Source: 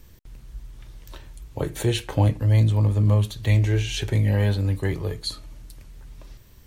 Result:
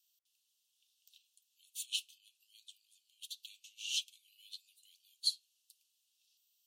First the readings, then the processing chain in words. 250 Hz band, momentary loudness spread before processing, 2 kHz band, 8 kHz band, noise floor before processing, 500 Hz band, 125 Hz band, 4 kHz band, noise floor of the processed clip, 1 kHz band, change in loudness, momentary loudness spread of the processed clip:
under -40 dB, 12 LU, -19.0 dB, -6.0 dB, -49 dBFS, under -40 dB, under -40 dB, -5.0 dB, -81 dBFS, under -40 dB, -17.0 dB, 23 LU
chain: limiter -15.5 dBFS, peak gain reduction 7.5 dB; steep high-pass 2700 Hz 96 dB/oct; upward expander 1.5:1, over -53 dBFS; gain -2 dB

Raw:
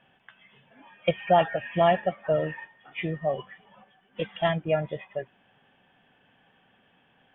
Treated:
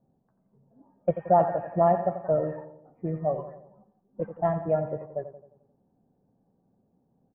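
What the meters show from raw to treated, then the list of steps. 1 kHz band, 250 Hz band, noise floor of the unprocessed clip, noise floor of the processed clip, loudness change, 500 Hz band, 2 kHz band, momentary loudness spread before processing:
0.0 dB, +0.5 dB, -64 dBFS, -71 dBFS, 0.0 dB, +0.5 dB, -14.5 dB, 15 LU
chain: LPF 1200 Hz 24 dB/oct; on a send: feedback echo 88 ms, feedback 55%, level -11 dB; on the sum: low-pass opened by the level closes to 380 Hz, open at -20.5 dBFS

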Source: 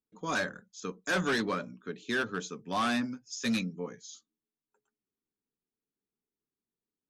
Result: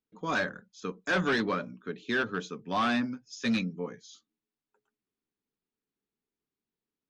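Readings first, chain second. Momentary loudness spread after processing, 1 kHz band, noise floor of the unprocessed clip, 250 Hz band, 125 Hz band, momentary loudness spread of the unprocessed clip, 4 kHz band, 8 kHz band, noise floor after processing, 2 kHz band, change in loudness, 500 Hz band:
13 LU, +2.0 dB, under -85 dBFS, +2.0 dB, +2.0 dB, 13 LU, 0.0 dB, -6.5 dB, under -85 dBFS, +2.0 dB, +1.5 dB, +2.0 dB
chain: LPF 4300 Hz 12 dB/oct; gain +2 dB

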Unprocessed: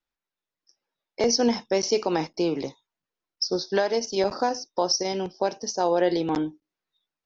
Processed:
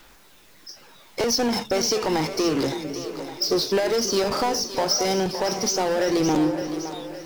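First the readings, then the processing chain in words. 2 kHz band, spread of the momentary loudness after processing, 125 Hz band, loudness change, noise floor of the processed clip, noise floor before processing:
+4.0 dB, 10 LU, +5.5 dB, +2.0 dB, -51 dBFS, under -85 dBFS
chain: compressor, threshold -24 dBFS, peak gain reduction 7.5 dB; power-law curve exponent 0.5; split-band echo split 410 Hz, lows 0.325 s, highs 0.564 s, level -10 dB; phaser 0.3 Hz, delay 1.4 ms, feedback 21%

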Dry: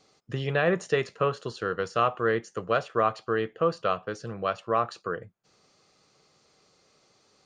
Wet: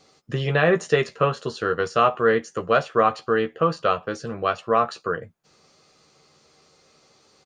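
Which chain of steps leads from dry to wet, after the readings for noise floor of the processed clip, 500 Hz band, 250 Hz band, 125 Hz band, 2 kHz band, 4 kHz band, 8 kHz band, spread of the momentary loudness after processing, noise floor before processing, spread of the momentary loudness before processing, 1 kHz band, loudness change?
-60 dBFS, +5.5 dB, +5.5 dB, +5.5 dB, +6.0 dB, +6.0 dB, n/a, 9 LU, -65 dBFS, 8 LU, +6.0 dB, +5.5 dB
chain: doubler 13 ms -7 dB; gain +5 dB

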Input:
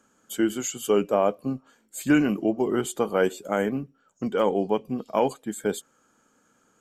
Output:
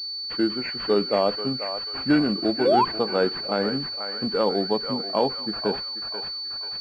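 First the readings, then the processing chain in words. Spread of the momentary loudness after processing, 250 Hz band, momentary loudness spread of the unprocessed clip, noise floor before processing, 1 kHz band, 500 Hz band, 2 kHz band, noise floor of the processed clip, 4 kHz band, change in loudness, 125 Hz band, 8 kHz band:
8 LU, 0.0 dB, 12 LU, -66 dBFS, +4.0 dB, +1.0 dB, +0.5 dB, -33 dBFS, +16.5 dB, +1.5 dB, 0.0 dB, under -20 dB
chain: thinning echo 0.487 s, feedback 68%, high-pass 1200 Hz, level -4 dB; painted sound rise, 2.65–2.85, 470–1100 Hz -18 dBFS; pulse-width modulation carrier 4500 Hz

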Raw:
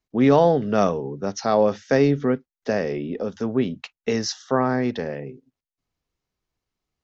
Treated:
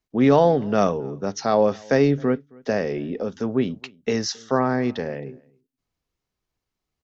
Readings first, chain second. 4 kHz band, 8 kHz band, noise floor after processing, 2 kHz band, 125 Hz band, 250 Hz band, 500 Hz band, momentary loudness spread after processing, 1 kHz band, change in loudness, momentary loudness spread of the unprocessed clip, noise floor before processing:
0.0 dB, n/a, -84 dBFS, 0.0 dB, 0.0 dB, 0.0 dB, 0.0 dB, 12 LU, 0.0 dB, 0.0 dB, 12 LU, under -85 dBFS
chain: outdoor echo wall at 46 m, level -26 dB

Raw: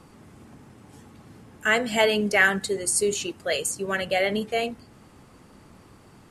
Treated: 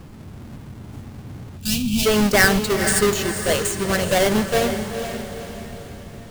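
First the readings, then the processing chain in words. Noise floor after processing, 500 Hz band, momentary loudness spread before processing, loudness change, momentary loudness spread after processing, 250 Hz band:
-40 dBFS, +5.0 dB, 8 LU, +4.0 dB, 21 LU, +9.5 dB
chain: half-waves squared off; low shelf 170 Hz +11.5 dB; spectral gain 1.57–2.06, 270–2300 Hz -25 dB; on a send: diffused feedback echo 0.476 s, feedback 48%, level -8 dB

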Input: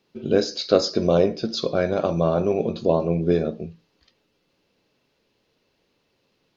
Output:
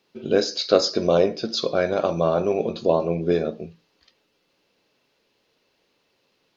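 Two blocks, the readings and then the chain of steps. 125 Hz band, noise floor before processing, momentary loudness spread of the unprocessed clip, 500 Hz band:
-4.5 dB, -70 dBFS, 6 LU, +0.5 dB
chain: low shelf 260 Hz -9.5 dB; gain +2.5 dB

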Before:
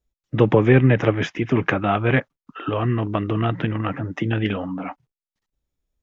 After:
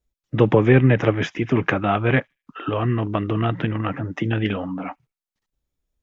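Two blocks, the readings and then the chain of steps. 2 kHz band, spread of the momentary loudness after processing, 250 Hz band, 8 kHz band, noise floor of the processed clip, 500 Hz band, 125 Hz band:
0.0 dB, 13 LU, 0.0 dB, n/a, under -85 dBFS, 0.0 dB, 0.0 dB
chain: on a send: thin delay 76 ms, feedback 30%, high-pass 5000 Hz, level -23 dB

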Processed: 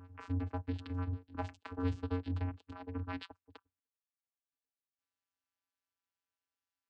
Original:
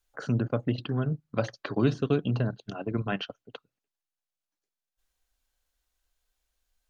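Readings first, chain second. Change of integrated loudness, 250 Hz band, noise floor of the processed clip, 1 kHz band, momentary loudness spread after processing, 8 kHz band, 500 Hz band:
-10.0 dB, -10.5 dB, under -85 dBFS, -7.0 dB, 8 LU, n/a, -15.0 dB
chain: vocoder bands 8, square 90.3 Hz; resonant low shelf 790 Hz -7.5 dB, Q 1.5; reverse echo 0.978 s -18 dB; gain -1 dB

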